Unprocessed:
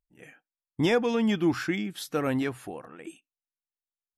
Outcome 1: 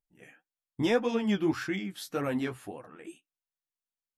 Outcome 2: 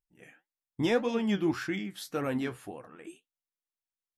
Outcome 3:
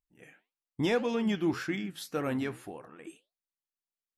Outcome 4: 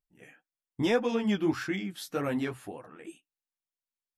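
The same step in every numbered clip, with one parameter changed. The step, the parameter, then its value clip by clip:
flange, regen: +22%, +56%, -79%, -12%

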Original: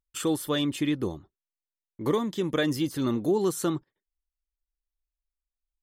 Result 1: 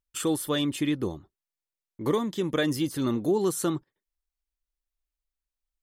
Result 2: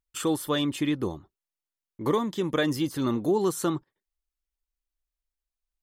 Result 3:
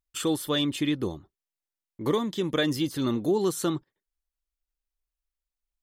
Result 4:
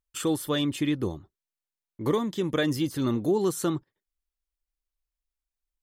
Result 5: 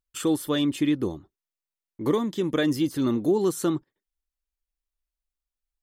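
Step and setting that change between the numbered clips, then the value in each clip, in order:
dynamic bell, frequency: 10 kHz, 990 Hz, 3.7 kHz, 100 Hz, 290 Hz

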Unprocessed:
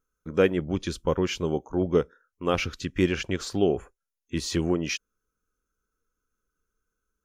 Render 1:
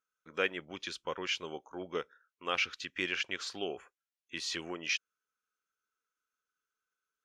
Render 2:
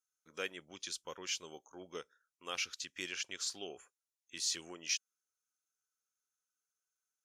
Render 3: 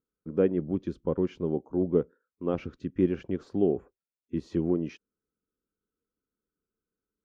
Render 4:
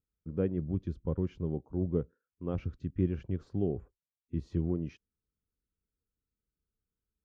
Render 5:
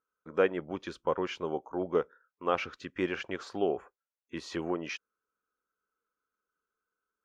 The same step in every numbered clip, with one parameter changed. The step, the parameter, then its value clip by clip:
band-pass filter, frequency: 2.6 kHz, 6.9 kHz, 260 Hz, 100 Hz, 980 Hz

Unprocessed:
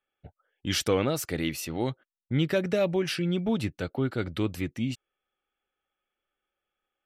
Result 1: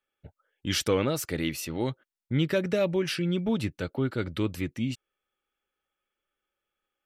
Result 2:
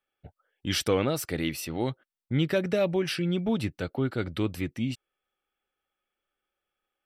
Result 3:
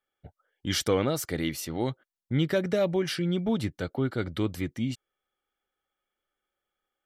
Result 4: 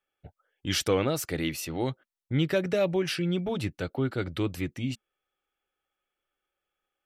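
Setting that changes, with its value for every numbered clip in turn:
band-stop, frequency: 730 Hz, 6.7 kHz, 2.6 kHz, 220 Hz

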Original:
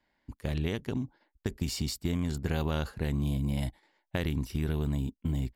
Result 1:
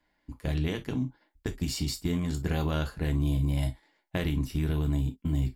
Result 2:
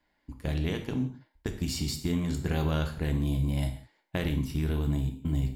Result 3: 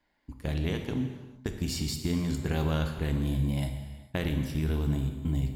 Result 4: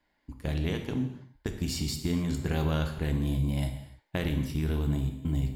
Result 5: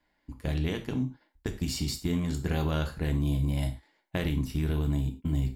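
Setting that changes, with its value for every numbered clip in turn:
gated-style reverb, gate: 80 ms, 200 ms, 480 ms, 320 ms, 130 ms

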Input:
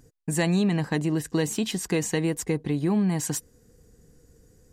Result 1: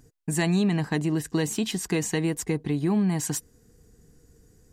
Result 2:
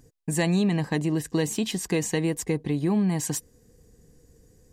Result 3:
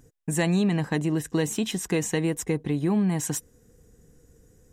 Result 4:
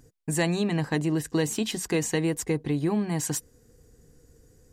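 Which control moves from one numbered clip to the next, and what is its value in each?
band-stop, frequency: 530 Hz, 1.4 kHz, 4.6 kHz, 190 Hz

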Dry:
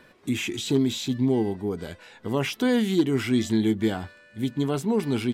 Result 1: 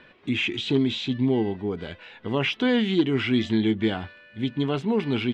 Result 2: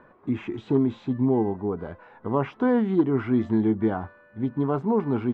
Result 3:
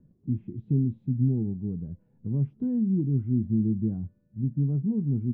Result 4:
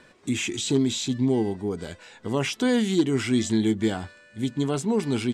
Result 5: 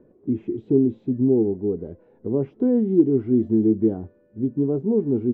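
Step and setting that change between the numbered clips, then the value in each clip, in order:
resonant low-pass, frequency: 3 kHz, 1.1 kHz, 160 Hz, 7.9 kHz, 400 Hz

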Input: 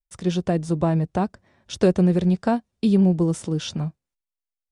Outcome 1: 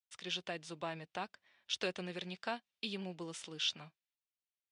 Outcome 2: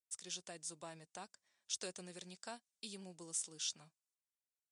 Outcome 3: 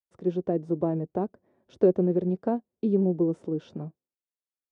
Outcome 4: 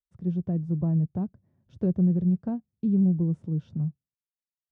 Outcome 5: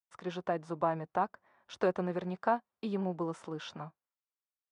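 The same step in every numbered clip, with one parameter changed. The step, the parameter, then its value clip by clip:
band-pass filter, frequency: 3 kHz, 7.9 kHz, 390 Hz, 130 Hz, 1.1 kHz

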